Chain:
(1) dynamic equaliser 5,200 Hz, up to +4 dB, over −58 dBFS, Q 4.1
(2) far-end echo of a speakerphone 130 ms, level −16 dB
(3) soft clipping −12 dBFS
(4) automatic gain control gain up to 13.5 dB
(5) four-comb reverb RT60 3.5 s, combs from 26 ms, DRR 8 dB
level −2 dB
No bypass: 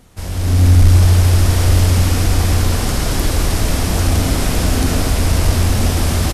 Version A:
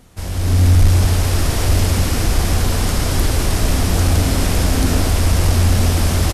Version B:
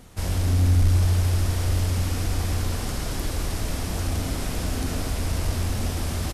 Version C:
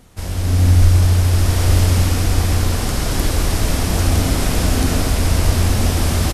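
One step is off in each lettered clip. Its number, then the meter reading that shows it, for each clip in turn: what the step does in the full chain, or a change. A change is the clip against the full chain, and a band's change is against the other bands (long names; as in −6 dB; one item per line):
5, change in momentary loudness spread −2 LU
4, change in momentary loudness spread +2 LU
3, distortion level −20 dB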